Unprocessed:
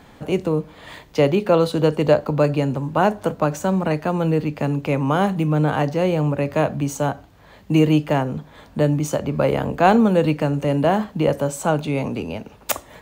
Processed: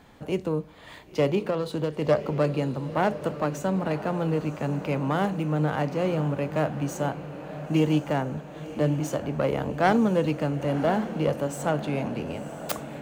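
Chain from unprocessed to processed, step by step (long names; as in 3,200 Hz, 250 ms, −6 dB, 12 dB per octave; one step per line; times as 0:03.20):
phase distortion by the signal itself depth 0.12 ms
0:01.41–0:02.02: downward compressor, threshold −17 dBFS, peak gain reduction 6.5 dB
feedback delay with all-pass diffusion 1,017 ms, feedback 57%, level −12 dB
level −6.5 dB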